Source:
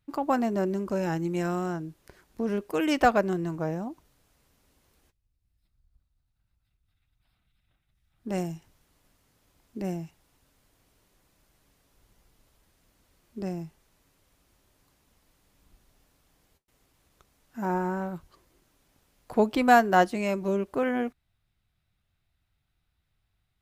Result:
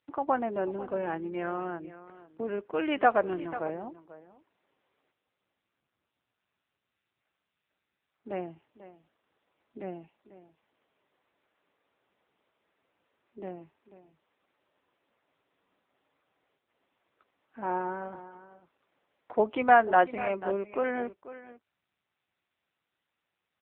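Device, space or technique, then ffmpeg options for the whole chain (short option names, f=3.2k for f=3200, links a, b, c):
satellite phone: -af "highpass=360,lowpass=3k,aecho=1:1:492:0.178" -ar 8000 -c:a libopencore_amrnb -b:a 6700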